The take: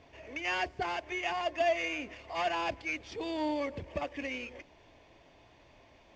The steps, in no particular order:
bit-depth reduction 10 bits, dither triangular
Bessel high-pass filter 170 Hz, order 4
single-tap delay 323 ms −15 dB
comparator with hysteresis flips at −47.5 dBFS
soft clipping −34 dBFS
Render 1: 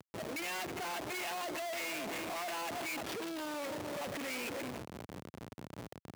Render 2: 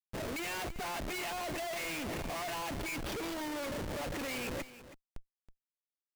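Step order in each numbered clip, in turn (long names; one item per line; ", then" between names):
bit-depth reduction, then single-tap delay, then comparator with hysteresis, then Bessel high-pass filter, then soft clipping
Bessel high-pass filter, then bit-depth reduction, then comparator with hysteresis, then soft clipping, then single-tap delay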